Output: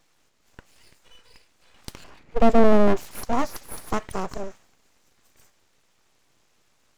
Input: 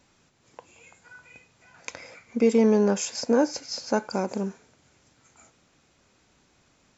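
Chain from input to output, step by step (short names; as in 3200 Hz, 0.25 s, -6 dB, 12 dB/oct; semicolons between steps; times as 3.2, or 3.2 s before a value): 2.04–3.11 tilt -4 dB/oct; full-wave rectifier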